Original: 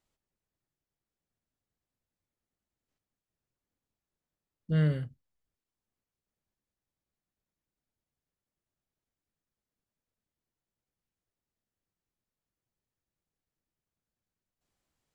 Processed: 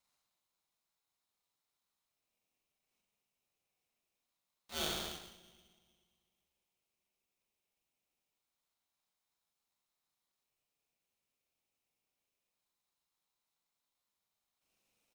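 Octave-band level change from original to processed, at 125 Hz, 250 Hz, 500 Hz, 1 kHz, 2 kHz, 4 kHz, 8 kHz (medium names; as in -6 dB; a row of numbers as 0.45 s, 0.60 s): -27.0 dB, -17.5 dB, -7.0 dB, +5.5 dB, -2.0 dB, +12.5 dB, no reading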